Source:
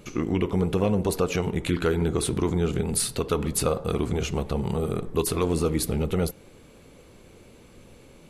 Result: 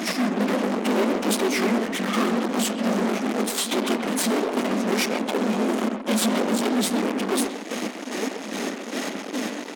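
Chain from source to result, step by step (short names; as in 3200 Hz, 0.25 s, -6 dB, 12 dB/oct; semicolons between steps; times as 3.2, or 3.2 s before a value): tracing distortion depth 0.074 ms; chopper 2.9 Hz, depth 60%, duty 40%; reverse; compressor 8:1, threshold -35 dBFS, peak gain reduction 15.5 dB; reverse; formant-preserving pitch shift -8 st; de-hum 320 Hz, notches 3; phaser 1.8 Hz, delay 4.8 ms, feedback 48%; in parallel at -7 dB: fuzz box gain 53 dB, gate -59 dBFS; on the sum: elliptic high-pass 240 Hz, stop band 40 dB; speakerphone echo 0.11 s, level -7 dB; varispeed -15%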